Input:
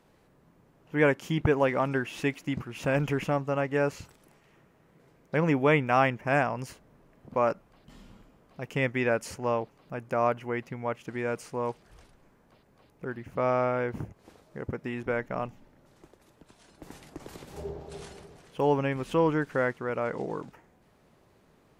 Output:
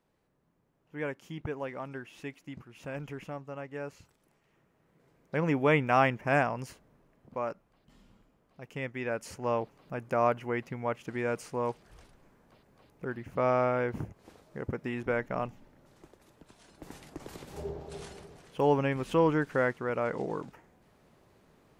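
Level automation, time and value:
0:03.96 −12.5 dB
0:05.87 −1 dB
0:06.40 −1 dB
0:07.49 −9 dB
0:08.95 −9 dB
0:09.63 −0.5 dB

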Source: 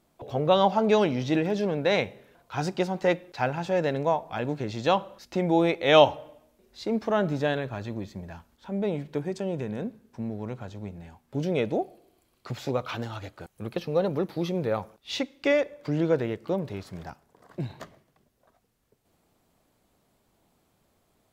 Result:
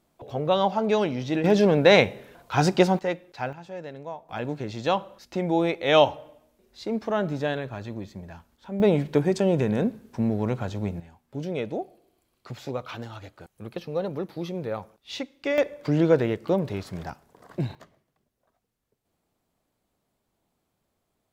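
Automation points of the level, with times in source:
−1.5 dB
from 0:01.44 +8 dB
from 0:02.99 −4 dB
from 0:03.53 −12 dB
from 0:04.29 −1 dB
from 0:08.80 +8.5 dB
from 0:11.00 −3.5 dB
from 0:15.58 +4.5 dB
from 0:17.75 −8 dB

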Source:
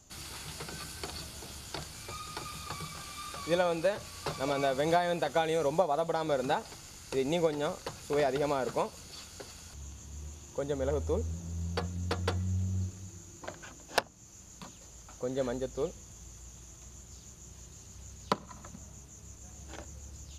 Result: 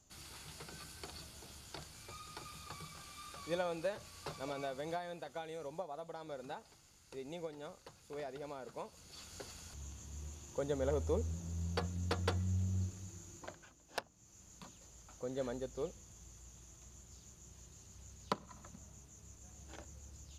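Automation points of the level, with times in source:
0:04.24 −9 dB
0:05.26 −16 dB
0:08.72 −16 dB
0:09.34 −3.5 dB
0:13.36 −3.5 dB
0:13.75 −15 dB
0:14.47 −7 dB

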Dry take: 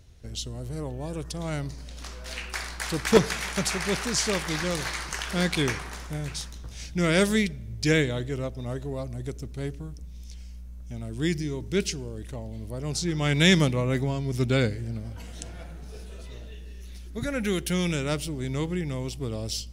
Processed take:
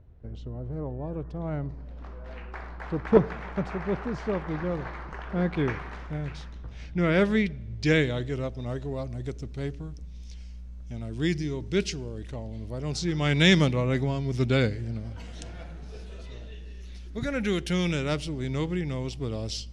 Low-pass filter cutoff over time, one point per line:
0:05.44 1,100 Hz
0:05.86 2,200 Hz
0:07.25 2,200 Hz
0:08.17 5,400 Hz

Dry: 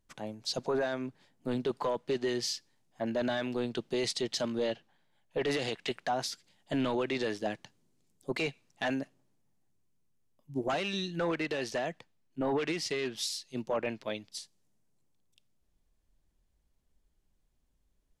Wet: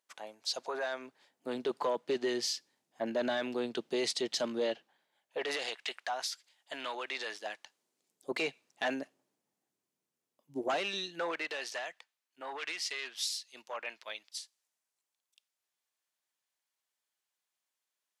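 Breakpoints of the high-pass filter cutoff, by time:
0:00.82 680 Hz
0:01.89 260 Hz
0:04.61 260 Hz
0:05.94 890 Hz
0:07.52 890 Hz
0:08.31 320 Hz
0:10.71 320 Hz
0:11.91 1,100 Hz

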